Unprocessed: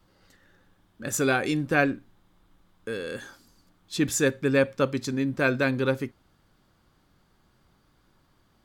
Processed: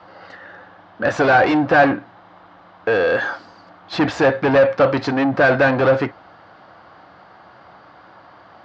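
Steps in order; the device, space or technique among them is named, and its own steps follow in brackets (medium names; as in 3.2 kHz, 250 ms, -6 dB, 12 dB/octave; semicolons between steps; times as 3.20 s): overdrive pedal into a guitar cabinet (overdrive pedal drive 30 dB, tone 1.1 kHz, clips at -8 dBFS; cabinet simulation 87–4500 Hz, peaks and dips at 150 Hz -7 dB, 240 Hz -10 dB, 390 Hz -8 dB, 710 Hz +6 dB, 2.4 kHz -4 dB, 3.5 kHz -6 dB); trim +5 dB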